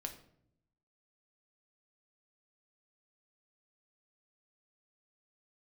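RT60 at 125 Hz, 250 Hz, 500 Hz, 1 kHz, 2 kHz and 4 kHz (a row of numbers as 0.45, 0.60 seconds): 1.2, 1.0, 0.80, 0.60, 0.50, 0.45 seconds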